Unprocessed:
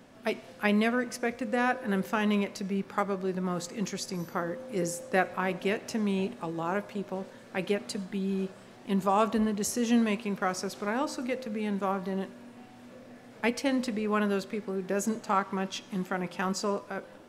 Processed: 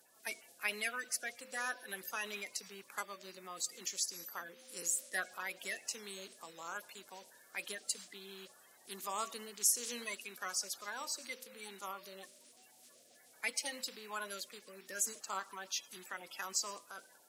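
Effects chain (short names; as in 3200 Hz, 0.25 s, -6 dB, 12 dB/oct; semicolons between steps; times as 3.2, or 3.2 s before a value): bin magnitudes rounded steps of 30 dB; differentiator; gain +4 dB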